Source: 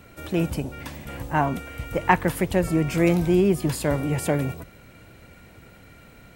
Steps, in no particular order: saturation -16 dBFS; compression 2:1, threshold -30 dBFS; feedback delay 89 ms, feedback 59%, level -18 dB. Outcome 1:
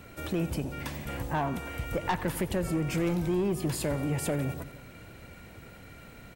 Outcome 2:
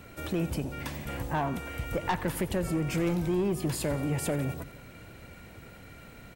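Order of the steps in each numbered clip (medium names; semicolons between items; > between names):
saturation > feedback delay > compression; saturation > compression > feedback delay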